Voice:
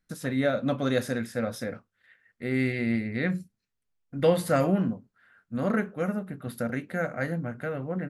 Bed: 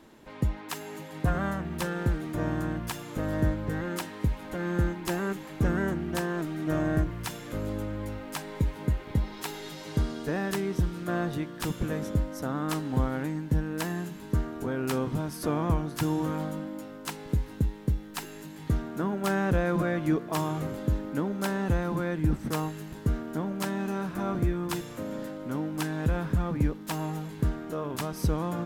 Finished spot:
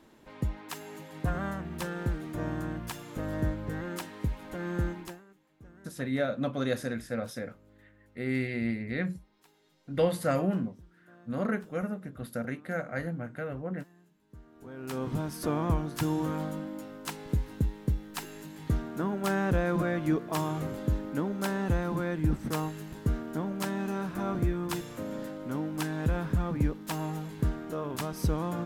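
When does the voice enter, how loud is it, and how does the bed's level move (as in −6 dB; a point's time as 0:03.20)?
5.75 s, −4.0 dB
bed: 0:05.01 −4 dB
0:05.25 −27.5 dB
0:14.25 −27.5 dB
0:15.11 −1.5 dB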